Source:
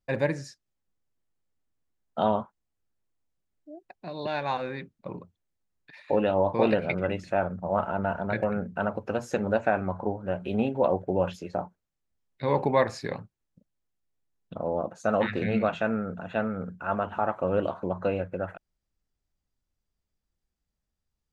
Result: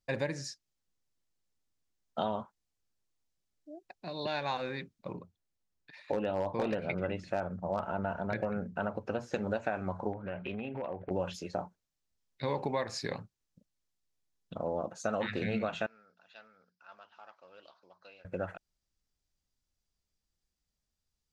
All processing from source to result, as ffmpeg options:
ffmpeg -i in.wav -filter_complex "[0:a]asettb=1/sr,asplit=3[link_01][link_02][link_03];[link_01]atrim=end=5.134[link_04];[link_02]atrim=start=5.13:end=9.34,asetpts=PTS-STARTPTS,afade=type=in:duration=0.004:curve=qsin,afade=type=out:start_time=4.206:duration=0.004:curve=qsin,acrossover=split=4200[link_05][link_06];[link_06]acompressor=threshold=-59dB:ratio=4:attack=1:release=60[link_07];[link_05][link_07]amix=inputs=2:normalize=0,highshelf=frequency=2300:gain=-5.5,volume=15.5dB,asoftclip=hard,volume=-15.5dB[link_08];[link_03]atrim=start=9.336[link_09];[link_04][link_08]acrossfade=duration=0.004:curve1=hsin:curve2=qsin[link_10];[link_10][link_09]acrossfade=duration=0.004:curve1=qsin:curve2=hsin,asettb=1/sr,asplit=3[link_11][link_12][link_13];[link_11]atrim=end=10.134[link_14];[link_12]atrim=start=10.13:end=11.11,asetpts=PTS-STARTPTS,afade=type=in:duration=0.004:curve=qsin,afade=type=out:start_time=0.976:duration=0.004:curve=qsin,acompressor=threshold=-30dB:ratio=12:attack=3.2:release=140:knee=1:detection=peak,volume=26.5dB,asoftclip=hard,volume=-26.5dB,lowpass=frequency=2300:width_type=q:width=2.5[link_15];[link_13]atrim=start=11.106[link_16];[link_14][link_15]acrossfade=duration=0.004:curve1=hsin:curve2=qsin[link_17];[link_17][link_16]acrossfade=duration=0.004:curve1=qsin:curve2=hsin,asettb=1/sr,asplit=3[link_18][link_19][link_20];[link_18]atrim=end=15.864[link_21];[link_19]atrim=start=15.86:end=18.25,asetpts=PTS-STARTPTS,afade=type=in:duration=0.004:curve=qsin,afade=type=out:start_time=2.386:duration=0.004:curve=qsin,aemphasis=mode=reproduction:type=75fm,acontrast=79,bandpass=frequency=5000:width_type=q:width=5.5[link_22];[link_20]atrim=start=18.246[link_23];[link_21][link_22]acrossfade=duration=0.004:curve1=hsin:curve2=qsin[link_24];[link_24][link_23]acrossfade=duration=0.004:curve1=qsin:curve2=hsin,equalizer=frequency=5400:width_type=o:width=1.7:gain=8.5,acompressor=threshold=-25dB:ratio=6,volume=-3.5dB" out.wav

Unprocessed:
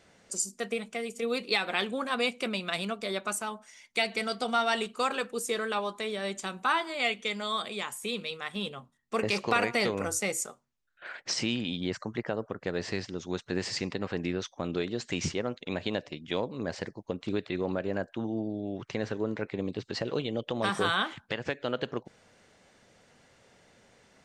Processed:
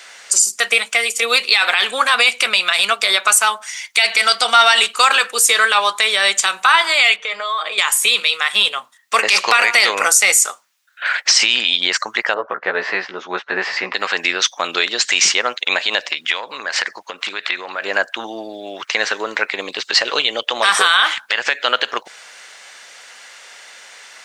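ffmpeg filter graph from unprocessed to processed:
ffmpeg -i in.wav -filter_complex "[0:a]asettb=1/sr,asplit=3[link_01][link_02][link_03];[link_01]atrim=end=7.164[link_04];[link_02]atrim=start=7.16:end=7.78,asetpts=PTS-STARTPTS,afade=type=in:duration=0.004:curve=qsin,afade=type=out:start_time=0.616:duration=0.004:curve=qsin,bandpass=frequency=590:width_type=q:width=0.68,aecho=1:1:6.5:0.65,atrim=end_sample=27342,acompressor=threshold=-36dB:ratio=12:attack=3.2:release=140:knee=1:detection=peak[link_05];[link_03]atrim=start=7.776[link_06];[link_04][link_05]acrossfade=duration=0.004:curve1=hsin:curve2=qsin[link_07];[link_07][link_06]acrossfade=duration=0.004:curve1=qsin:curve2=hsin,asettb=1/sr,asplit=3[link_08][link_09][link_10];[link_08]atrim=end=12.344[link_11];[link_09]atrim=start=12.34:end=13.94,asetpts=PTS-STARTPTS,afade=type=in:duration=0.004:curve=qsin,afade=type=out:start_time=1.596:duration=0.004:curve=qsin,lowpass=1500,asplit=2[link_12][link_13];[link_13]adelay=16,volume=-3dB[link_14];[link_12][link_14]amix=inputs=2:normalize=0,atrim=end_sample=70560[link_15];[link_10]atrim=start=13.936[link_16];[link_11][link_15]acrossfade=duration=0.004:curve1=hsin:curve2=qsin[link_17];[link_17][link_16]acrossfade=duration=0.004:curve1=qsin:curve2=hsin,asettb=1/sr,asplit=3[link_18][link_19][link_20];[link_18]atrim=end=16.104[link_21];[link_19]atrim=start=16.1:end=17.82,asetpts=PTS-STARTPTS,afade=type=in:duration=0.004:curve=qsin,afade=type=out:start_time=1.716:duration=0.004:curve=qsin,equalizer=frequency=1600:width_type=o:width=2.1:gain=7,acompressor=threshold=-36dB:ratio=5:attack=3.2:release=140:knee=1:detection=peak[link_22];[link_20]atrim=start=17.816[link_23];[link_21][link_22]acrossfade=duration=0.004:curve1=hsin:curve2=qsin[link_24];[link_24][link_23]acrossfade=duration=0.004:curve1=qsin:curve2=hsin,highpass=1300,alimiter=level_in=26dB:limit=-1dB:release=50:level=0:latency=1,volume=-1dB" out.wav

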